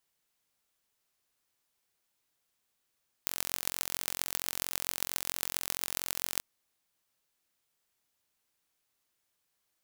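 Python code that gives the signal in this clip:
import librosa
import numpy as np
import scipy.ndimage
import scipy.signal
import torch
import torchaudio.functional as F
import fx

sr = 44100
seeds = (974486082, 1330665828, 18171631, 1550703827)

y = fx.impulse_train(sr, length_s=3.15, per_s=44.4, accent_every=6, level_db=-2.0)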